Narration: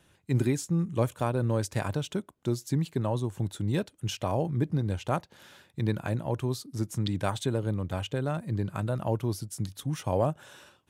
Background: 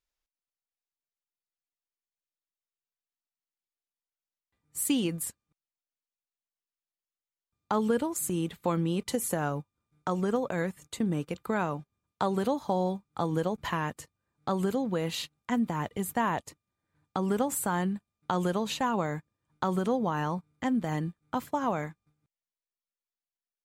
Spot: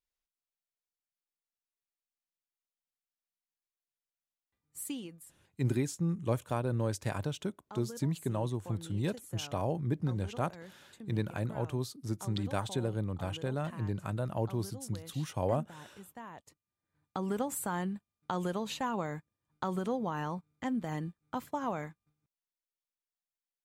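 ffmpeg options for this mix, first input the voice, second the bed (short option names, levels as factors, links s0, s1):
-filter_complex "[0:a]adelay=5300,volume=0.596[s0];[1:a]volume=2.51,afade=t=out:st=4.45:d=0.7:silence=0.211349,afade=t=in:st=16.34:d=0.61:silence=0.211349[s1];[s0][s1]amix=inputs=2:normalize=0"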